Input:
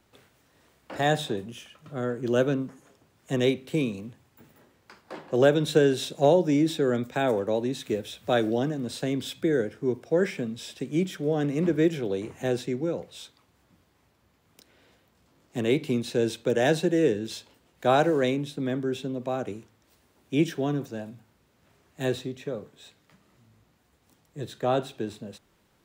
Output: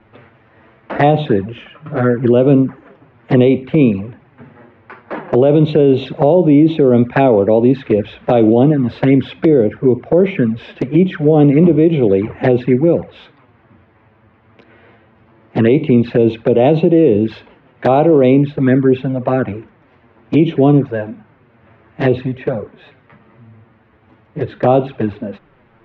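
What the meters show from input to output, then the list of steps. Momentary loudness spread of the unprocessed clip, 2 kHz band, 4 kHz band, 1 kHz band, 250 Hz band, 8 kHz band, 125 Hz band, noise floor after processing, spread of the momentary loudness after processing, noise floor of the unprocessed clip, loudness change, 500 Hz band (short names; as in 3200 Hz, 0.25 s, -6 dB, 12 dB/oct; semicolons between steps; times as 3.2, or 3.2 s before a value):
16 LU, +7.5 dB, +2.5 dB, +11.5 dB, +15.0 dB, under -15 dB, +16.0 dB, -52 dBFS, 12 LU, -66 dBFS, +13.5 dB, +13.0 dB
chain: LPF 2400 Hz 24 dB/oct; envelope flanger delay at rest 9.4 ms, full sweep at -23 dBFS; maximiser +20 dB; gain -1 dB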